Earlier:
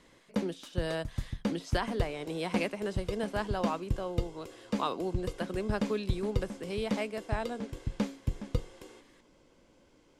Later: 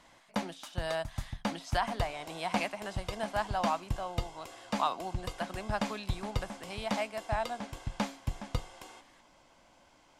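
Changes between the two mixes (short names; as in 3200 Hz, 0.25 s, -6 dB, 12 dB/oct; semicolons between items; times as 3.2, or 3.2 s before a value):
background +4.5 dB; master: add resonant low shelf 570 Hz -7 dB, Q 3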